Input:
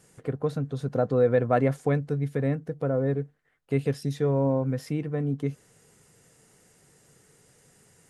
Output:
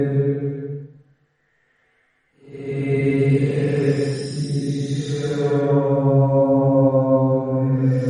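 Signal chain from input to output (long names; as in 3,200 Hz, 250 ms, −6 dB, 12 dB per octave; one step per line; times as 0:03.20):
extreme stretch with random phases 5×, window 0.25 s, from 0:03.13
level +8 dB
MP3 40 kbit/s 48,000 Hz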